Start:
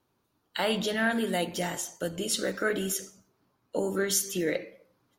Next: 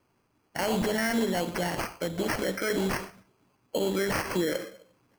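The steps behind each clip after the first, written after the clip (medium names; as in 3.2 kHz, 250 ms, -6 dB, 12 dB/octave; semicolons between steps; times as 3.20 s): peak limiter -22.5 dBFS, peak gain reduction 8.5 dB; sample-and-hold 12×; trim +4 dB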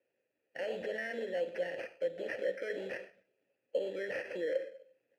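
vowel filter e; trim +1.5 dB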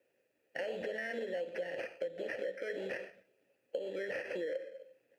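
compression, threshold -41 dBFS, peak gain reduction 13 dB; trim +5.5 dB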